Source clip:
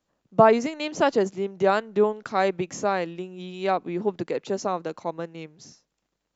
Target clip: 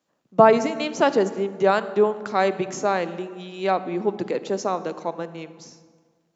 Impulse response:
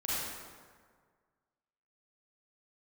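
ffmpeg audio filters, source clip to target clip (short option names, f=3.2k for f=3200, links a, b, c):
-filter_complex "[0:a]highpass=170,asplit=2[a][b];[b]lowshelf=f=240:g=12[c];[1:a]atrim=start_sample=2205[d];[c][d]afir=irnorm=-1:irlink=0,volume=-19.5dB[e];[a][e]amix=inputs=2:normalize=0,volume=1.5dB"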